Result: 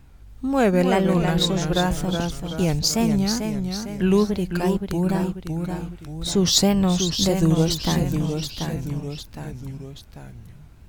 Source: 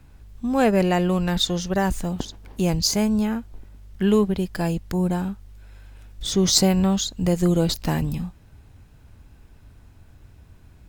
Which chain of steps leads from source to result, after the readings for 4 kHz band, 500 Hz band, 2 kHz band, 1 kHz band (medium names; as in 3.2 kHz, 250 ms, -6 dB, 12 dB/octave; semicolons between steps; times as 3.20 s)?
+2.0 dB, +1.0 dB, +1.5 dB, +1.0 dB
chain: wow and flutter 150 cents; ever faster or slower copies 267 ms, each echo -1 st, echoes 3, each echo -6 dB